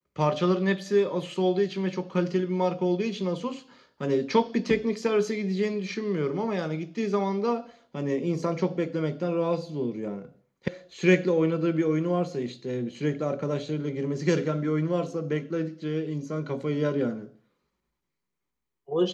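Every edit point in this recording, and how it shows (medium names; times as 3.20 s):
10.68 s: sound stops dead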